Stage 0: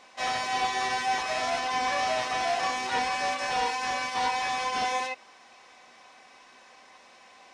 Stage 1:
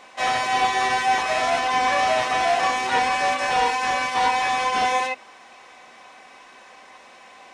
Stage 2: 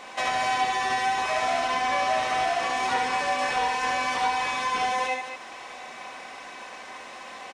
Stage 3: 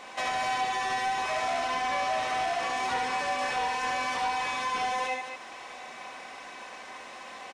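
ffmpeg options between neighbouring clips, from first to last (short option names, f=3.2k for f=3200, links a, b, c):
-af "equalizer=f=5.1k:t=o:w=0.82:g=-5.5,bandreject=f=50:t=h:w=6,bandreject=f=100:t=h:w=6,bandreject=f=150:t=h:w=6,bandreject=f=200:t=h:w=6,bandreject=f=250:t=h:w=6,volume=7.5dB"
-filter_complex "[0:a]acompressor=threshold=-31dB:ratio=4,asplit=2[a][b];[b]aecho=0:1:69.97|215.7:0.631|0.447[c];[a][c]amix=inputs=2:normalize=0,volume=4dB"
-af "asoftclip=type=tanh:threshold=-19dB,volume=-2.5dB"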